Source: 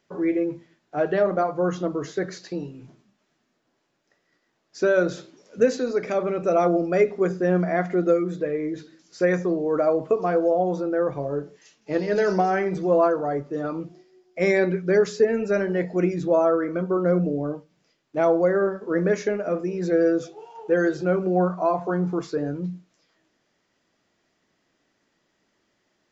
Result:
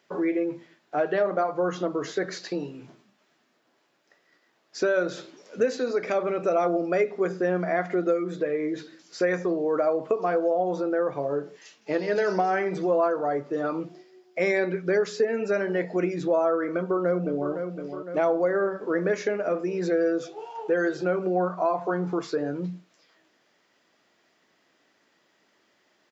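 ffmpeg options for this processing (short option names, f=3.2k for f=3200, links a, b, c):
-filter_complex "[0:a]asplit=2[a][b];[b]afade=t=in:st=16.75:d=0.01,afade=t=out:st=17.51:d=0.01,aecho=0:1:510|1020|1530|2040|2550:0.237137|0.118569|0.0592843|0.0296422|0.0148211[c];[a][c]amix=inputs=2:normalize=0,highpass=f=400:p=1,equalizer=f=6.5k:w=1.8:g=-4,acompressor=threshold=-32dB:ratio=2,volume=6dB"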